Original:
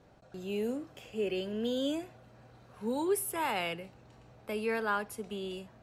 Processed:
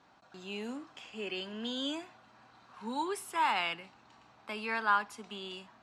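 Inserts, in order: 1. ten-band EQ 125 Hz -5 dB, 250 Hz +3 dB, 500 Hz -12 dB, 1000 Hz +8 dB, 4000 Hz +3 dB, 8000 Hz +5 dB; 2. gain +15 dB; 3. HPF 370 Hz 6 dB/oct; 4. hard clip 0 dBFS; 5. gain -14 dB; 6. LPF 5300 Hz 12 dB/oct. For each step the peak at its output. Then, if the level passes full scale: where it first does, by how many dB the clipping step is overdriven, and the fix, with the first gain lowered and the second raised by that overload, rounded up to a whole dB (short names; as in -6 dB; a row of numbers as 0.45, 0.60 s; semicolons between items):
-16.5, -1.5, -1.5, -1.5, -15.5, -15.5 dBFS; no overload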